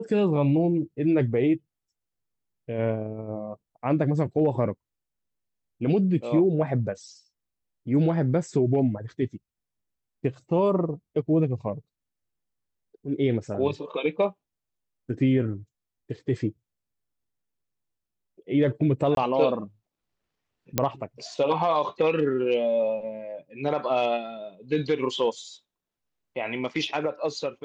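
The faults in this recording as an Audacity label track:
19.150000	19.170000	gap 22 ms
20.780000	20.780000	pop -6 dBFS

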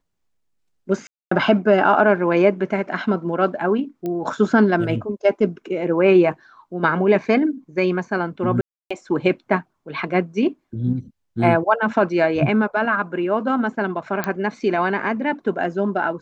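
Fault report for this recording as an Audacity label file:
1.070000	1.310000	gap 0.244 s
4.060000	4.060000	pop -16 dBFS
8.610000	8.900000	gap 0.295 s
14.240000	14.240000	pop -8 dBFS

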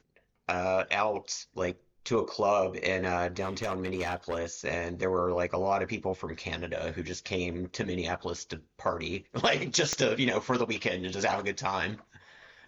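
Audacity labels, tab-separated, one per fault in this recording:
3.410000	4.390000	clipped -26.5 dBFS
9.930000	9.930000	pop -14 dBFS

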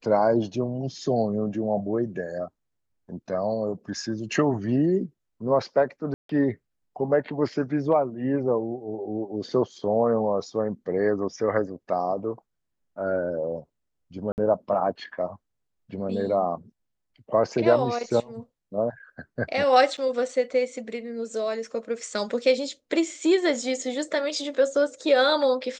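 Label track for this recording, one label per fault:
6.140000	6.290000	gap 0.153 s
14.320000	14.380000	gap 59 ms
19.970000	19.980000	gap 7.5 ms

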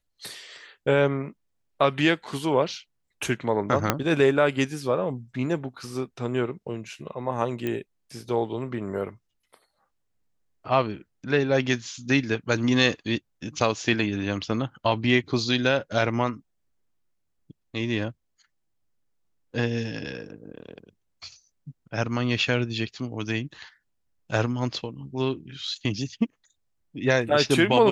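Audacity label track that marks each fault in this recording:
3.900000	3.900000	pop -4 dBFS
7.670000	7.670000	pop -16 dBFS

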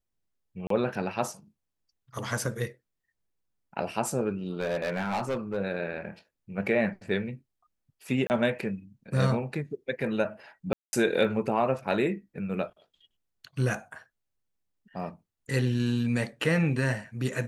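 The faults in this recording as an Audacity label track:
0.670000	0.700000	gap 33 ms
4.590000	5.580000	clipped -25 dBFS
8.270000	8.300000	gap 29 ms
10.730000	10.930000	gap 0.2 s

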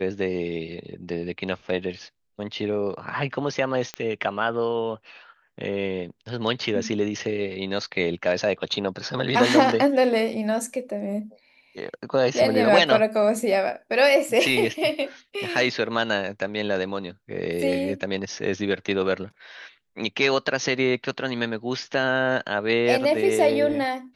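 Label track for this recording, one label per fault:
3.940000	3.940000	pop -15 dBFS

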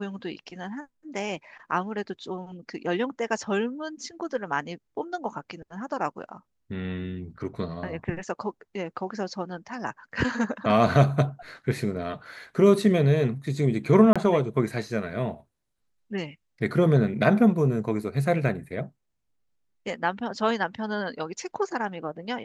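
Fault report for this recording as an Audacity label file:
14.130000	14.160000	gap 26 ms

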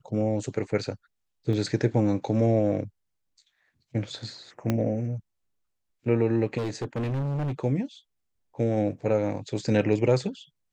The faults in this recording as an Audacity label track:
1.530000	1.530000	gap 2.2 ms
4.700000	4.700000	pop -12 dBFS
6.570000	7.530000	clipped -26 dBFS

